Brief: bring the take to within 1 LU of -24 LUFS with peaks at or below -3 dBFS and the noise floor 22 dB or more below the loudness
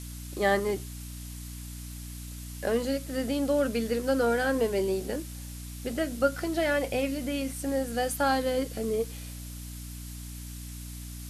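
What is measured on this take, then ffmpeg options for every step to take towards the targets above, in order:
hum 60 Hz; highest harmonic 300 Hz; hum level -38 dBFS; noise floor -40 dBFS; noise floor target -51 dBFS; loudness -29.0 LUFS; peak level -12.0 dBFS; loudness target -24.0 LUFS
-> -af "bandreject=f=60:t=h:w=4,bandreject=f=120:t=h:w=4,bandreject=f=180:t=h:w=4,bandreject=f=240:t=h:w=4,bandreject=f=300:t=h:w=4"
-af "afftdn=nr=11:nf=-40"
-af "volume=1.78"

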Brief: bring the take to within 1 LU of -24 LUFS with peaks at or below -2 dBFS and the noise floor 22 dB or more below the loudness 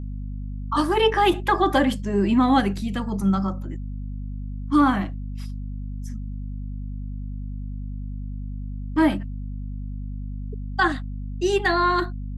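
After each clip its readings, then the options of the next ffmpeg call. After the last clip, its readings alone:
hum 50 Hz; highest harmonic 250 Hz; hum level -28 dBFS; loudness -25.0 LUFS; peak level -7.5 dBFS; loudness target -24.0 LUFS
-> -af "bandreject=f=50:t=h:w=4,bandreject=f=100:t=h:w=4,bandreject=f=150:t=h:w=4,bandreject=f=200:t=h:w=4,bandreject=f=250:t=h:w=4"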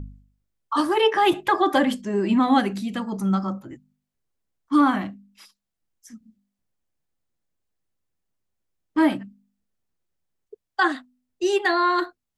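hum not found; loudness -22.0 LUFS; peak level -7.5 dBFS; loudness target -24.0 LUFS
-> -af "volume=0.794"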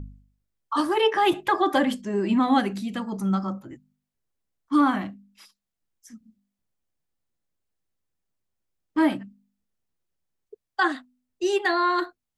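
loudness -24.0 LUFS; peak level -9.5 dBFS; noise floor -84 dBFS

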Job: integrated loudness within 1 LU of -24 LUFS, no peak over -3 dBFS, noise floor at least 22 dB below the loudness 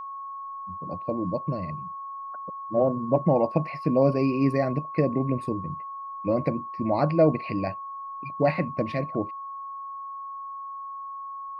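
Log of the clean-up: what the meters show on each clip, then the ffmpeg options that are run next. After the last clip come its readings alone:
steady tone 1.1 kHz; tone level -34 dBFS; loudness -27.5 LUFS; peak level -8.0 dBFS; loudness target -24.0 LUFS
-> -af "bandreject=f=1100:w=30"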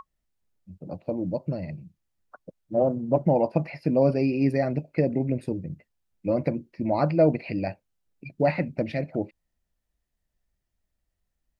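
steady tone not found; loudness -26.0 LUFS; peak level -7.5 dBFS; loudness target -24.0 LUFS
-> -af "volume=1.26"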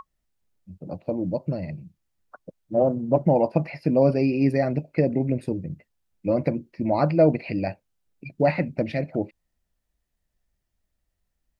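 loudness -24.0 LUFS; peak level -5.5 dBFS; noise floor -79 dBFS

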